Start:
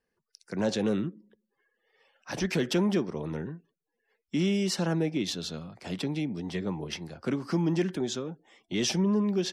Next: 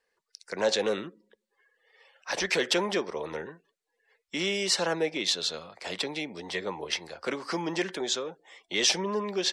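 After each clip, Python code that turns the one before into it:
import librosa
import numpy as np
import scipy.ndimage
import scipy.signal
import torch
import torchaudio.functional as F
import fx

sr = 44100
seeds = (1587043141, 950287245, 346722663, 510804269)

y = fx.graphic_eq(x, sr, hz=(125, 250, 500, 1000, 2000, 4000, 8000), db=(-10, -4, 10, 8, 10, 10, 11))
y = y * librosa.db_to_amplitude(-6.0)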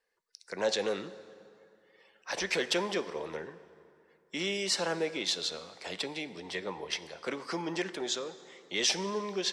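y = fx.rev_plate(x, sr, seeds[0], rt60_s=2.6, hf_ratio=0.65, predelay_ms=0, drr_db=13.5)
y = y * librosa.db_to_amplitude(-4.0)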